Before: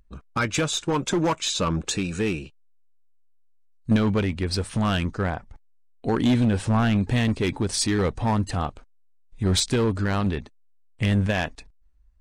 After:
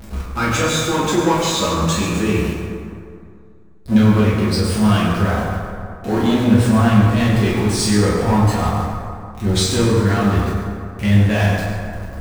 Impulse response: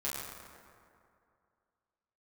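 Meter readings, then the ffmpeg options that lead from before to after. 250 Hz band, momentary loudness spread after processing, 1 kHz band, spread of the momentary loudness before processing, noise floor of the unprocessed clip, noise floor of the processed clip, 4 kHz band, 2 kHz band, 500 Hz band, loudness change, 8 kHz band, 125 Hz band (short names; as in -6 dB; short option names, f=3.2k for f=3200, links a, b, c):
+8.0 dB, 13 LU, +8.5 dB, 7 LU, -57 dBFS, -39 dBFS, +5.0 dB, +6.5 dB, +7.5 dB, +7.5 dB, +5.5 dB, +8.5 dB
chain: -filter_complex "[0:a]aeval=exprs='val(0)+0.5*0.0376*sgn(val(0))':c=same[a];[1:a]atrim=start_sample=2205[b];[a][b]afir=irnorm=-1:irlink=0,volume=1dB"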